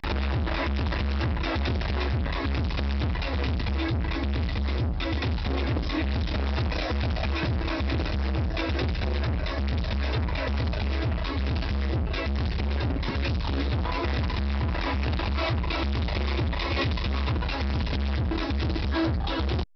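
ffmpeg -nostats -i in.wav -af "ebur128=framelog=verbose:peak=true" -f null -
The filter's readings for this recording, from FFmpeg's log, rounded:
Integrated loudness:
  I:         -27.9 LUFS
  Threshold: -37.9 LUFS
Loudness range:
  LRA:         0.7 LU
  Threshold: -48.0 LUFS
  LRA low:   -28.3 LUFS
  LRA high:  -27.6 LUFS
True peak:
  Peak:      -17.7 dBFS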